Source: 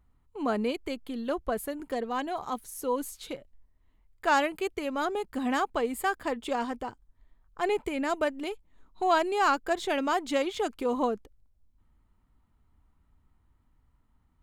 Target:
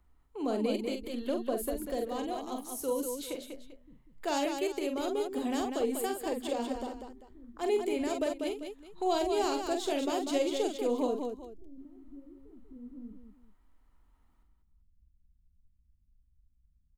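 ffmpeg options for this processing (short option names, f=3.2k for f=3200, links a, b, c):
-filter_complex "[0:a]equalizer=f=110:t=o:w=0.64:g=-12,acrossover=split=180|670|2900[a][b][c][d];[a]atempo=0.85[e];[c]acompressor=threshold=-53dB:ratio=6[f];[e][b][f][d]amix=inputs=4:normalize=0,aecho=1:1:46|194|393:0.501|0.501|0.158"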